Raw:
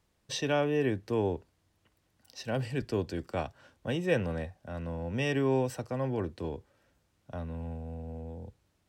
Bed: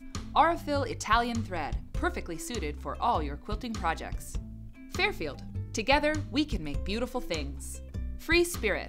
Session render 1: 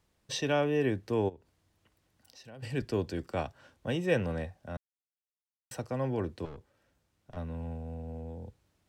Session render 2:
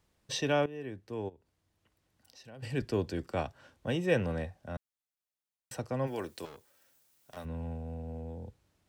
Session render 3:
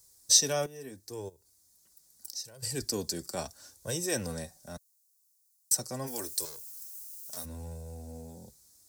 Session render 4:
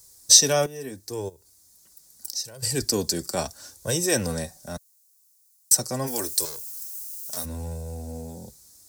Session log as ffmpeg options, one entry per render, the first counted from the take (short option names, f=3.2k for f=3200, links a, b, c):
-filter_complex "[0:a]asplit=3[a][b][c];[a]afade=t=out:st=1.28:d=0.02[d];[b]acompressor=threshold=-54dB:ratio=2.5:attack=3.2:release=140:knee=1:detection=peak,afade=t=in:st=1.28:d=0.02,afade=t=out:st=2.62:d=0.02[e];[c]afade=t=in:st=2.62:d=0.02[f];[d][e][f]amix=inputs=3:normalize=0,asettb=1/sr,asplit=3[g][h][i];[g]atrim=end=6.454[j];[h]atrim=start=6.45:end=7.37,asetpts=PTS-STARTPTS,afade=t=in:d=0.004:c=qsin,afade=t=out:st=0.916:d=0.004:c=qsin,aeval=exprs='(tanh(126*val(0)+0.6)-tanh(0.6))/126':c=same[k];[i]atrim=start=7.366[l];[j][k]acrossfade=d=0.004:c1=hsin:c2=qsin[m];[m][l]acrossfade=d=0.004:c1=qsin:c2=hsin,asplit=3[n][o][p];[n]atrim=end=4.77,asetpts=PTS-STARTPTS,afade=t=out:st=4.766:d=0.004:c=hsin[q];[o]atrim=start=4.77:end=5.71,asetpts=PTS-STARTPTS,volume=0[r];[p]atrim=start=5.71,asetpts=PTS-STARTPTS,afade=t=in:d=0.004:c=hsin[s];[q][r][s]concat=n=3:v=0:a=1"
-filter_complex "[0:a]asplit=3[a][b][c];[a]afade=t=out:st=6.06:d=0.02[d];[b]aemphasis=mode=production:type=riaa,afade=t=in:st=6.06:d=0.02,afade=t=out:st=7.44:d=0.02[e];[c]afade=t=in:st=7.44:d=0.02[f];[d][e][f]amix=inputs=3:normalize=0,asplit=2[g][h];[g]atrim=end=0.66,asetpts=PTS-STARTPTS,afade=t=out:st=0.656:d=0.004:c=hsin:silence=0.16788[i];[h]atrim=start=0.66,asetpts=PTS-STARTPTS,afade=t=in:d=2.12:silence=0.16788[j];[i][j]concat=n=2:v=0:a=1"
-af "aexciter=amount=11.8:drive=8.2:freq=4.5k,flanger=delay=1.9:depth=3.5:regen=-28:speed=0.77:shape=sinusoidal"
-af "volume=8.5dB,alimiter=limit=-1dB:level=0:latency=1"